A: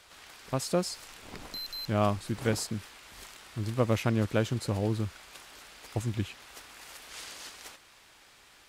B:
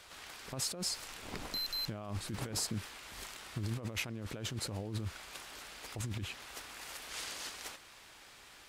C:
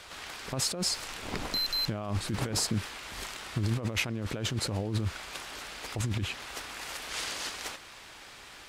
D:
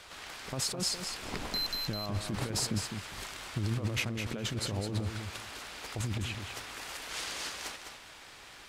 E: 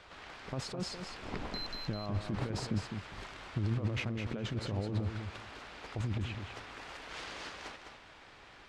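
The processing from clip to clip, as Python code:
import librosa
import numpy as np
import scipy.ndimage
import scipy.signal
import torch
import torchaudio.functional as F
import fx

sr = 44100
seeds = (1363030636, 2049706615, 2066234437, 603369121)

y1 = fx.over_compress(x, sr, threshold_db=-35.0, ratio=-1.0)
y1 = y1 * 10.0 ** (-3.5 / 20.0)
y2 = fx.high_shelf(y1, sr, hz=9800.0, db=-7.5)
y2 = y2 * 10.0 ** (8.0 / 20.0)
y3 = fx.echo_feedback(y2, sr, ms=206, feedback_pct=18, wet_db=-7.0)
y3 = y3 * 10.0 ** (-3.0 / 20.0)
y4 = fx.spacing_loss(y3, sr, db_at_10k=21)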